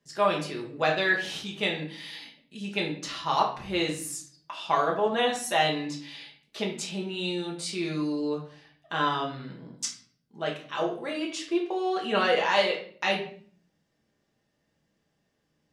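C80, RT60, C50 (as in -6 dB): 11.5 dB, 0.50 s, 7.5 dB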